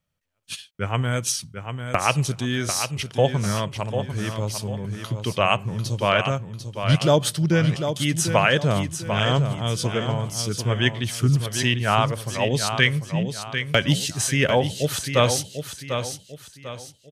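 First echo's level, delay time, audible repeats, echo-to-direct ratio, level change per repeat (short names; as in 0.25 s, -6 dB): -8.0 dB, 0.746 s, 4, -7.5 dB, -9.0 dB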